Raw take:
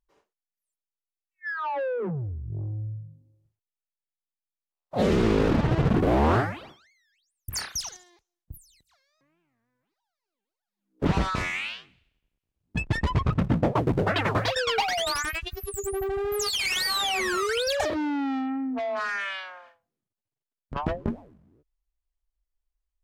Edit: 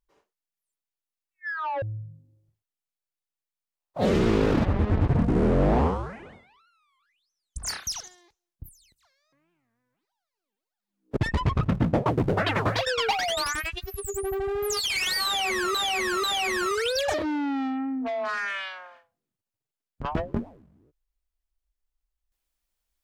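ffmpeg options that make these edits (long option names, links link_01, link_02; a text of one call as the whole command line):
ffmpeg -i in.wav -filter_complex "[0:a]asplit=7[link_01][link_02][link_03][link_04][link_05][link_06][link_07];[link_01]atrim=end=1.822[link_08];[link_02]atrim=start=2.788:end=5.624[link_09];[link_03]atrim=start=5.62:end=7.55,asetpts=PTS-STARTPTS,asetrate=28224,aresample=44100,atrim=end_sample=132989,asetpts=PTS-STARTPTS[link_10];[link_04]atrim=start=7.546:end=11.052[link_11];[link_05]atrim=start=12.858:end=17.442[link_12];[link_06]atrim=start=16.948:end=17.442[link_13];[link_07]atrim=start=16.948[link_14];[link_08][link_09]acrossfade=duration=0.004:curve1=hsin:curve2=hsin[link_15];[link_15][link_10]acrossfade=duration=0.004:curve1=hsin:curve2=hsin[link_16];[link_16][link_11]acrossfade=duration=0.004:curve1=hsin:curve2=hsin[link_17];[link_17][link_12]acrossfade=duration=0.004:curve1=hsin:curve2=hsin[link_18];[link_18][link_13]acrossfade=duration=0.004:curve1=hsin:curve2=hsin[link_19];[link_19][link_14]acrossfade=duration=0.004:curve1=hsin:curve2=hsin" out.wav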